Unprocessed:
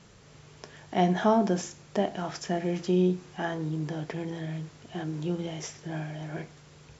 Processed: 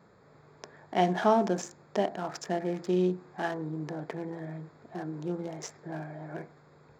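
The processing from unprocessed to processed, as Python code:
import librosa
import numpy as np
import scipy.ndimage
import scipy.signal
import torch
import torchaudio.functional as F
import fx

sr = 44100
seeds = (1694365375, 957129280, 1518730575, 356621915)

y = fx.wiener(x, sr, points=15)
y = fx.highpass(y, sr, hz=340.0, slope=6)
y = F.gain(torch.from_numpy(y), 1.5).numpy()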